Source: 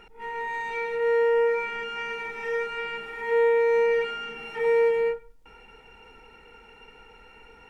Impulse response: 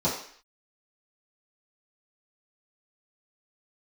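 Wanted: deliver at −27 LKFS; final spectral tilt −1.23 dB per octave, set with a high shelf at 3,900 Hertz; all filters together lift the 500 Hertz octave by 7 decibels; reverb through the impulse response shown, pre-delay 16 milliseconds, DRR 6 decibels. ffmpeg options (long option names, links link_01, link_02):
-filter_complex "[0:a]equalizer=frequency=500:width_type=o:gain=7.5,highshelf=frequency=3900:gain=-9,asplit=2[link_01][link_02];[1:a]atrim=start_sample=2205,adelay=16[link_03];[link_02][link_03]afir=irnorm=-1:irlink=0,volume=-18dB[link_04];[link_01][link_04]amix=inputs=2:normalize=0,volume=-11.5dB"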